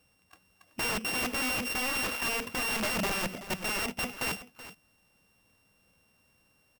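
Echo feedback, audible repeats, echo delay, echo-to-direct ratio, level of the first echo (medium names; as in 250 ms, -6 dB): no regular repeats, 1, 378 ms, -14.5 dB, -14.5 dB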